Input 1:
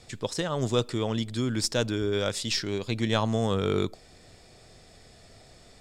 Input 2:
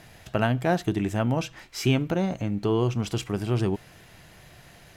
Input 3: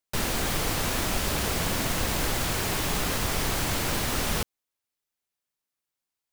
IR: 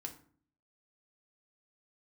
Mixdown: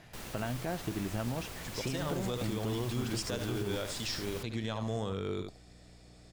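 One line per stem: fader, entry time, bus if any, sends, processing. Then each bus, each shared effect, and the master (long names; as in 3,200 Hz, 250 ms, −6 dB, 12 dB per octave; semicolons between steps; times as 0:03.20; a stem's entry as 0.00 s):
−7.0 dB, 1.55 s, no send, echo send −9.5 dB, mains hum 60 Hz, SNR 20 dB
−5.0 dB, 0.00 s, no send, no echo send, high-shelf EQ 9,600 Hz −11.5 dB; downward compressor, threshold −26 dBFS, peak gain reduction 9.5 dB
−17.0 dB, 0.00 s, no send, no echo send, no processing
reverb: not used
echo: single-tap delay 73 ms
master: brickwall limiter −25 dBFS, peak gain reduction 7 dB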